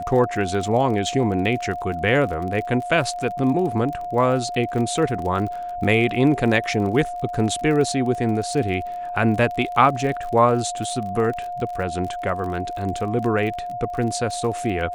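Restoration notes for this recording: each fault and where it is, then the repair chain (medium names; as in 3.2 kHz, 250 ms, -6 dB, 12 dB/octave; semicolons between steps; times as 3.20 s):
crackle 36 per s -29 dBFS
whine 710 Hz -27 dBFS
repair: de-click; band-stop 710 Hz, Q 30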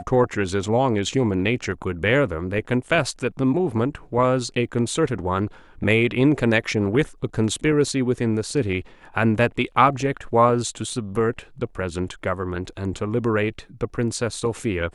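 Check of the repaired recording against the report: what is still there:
nothing left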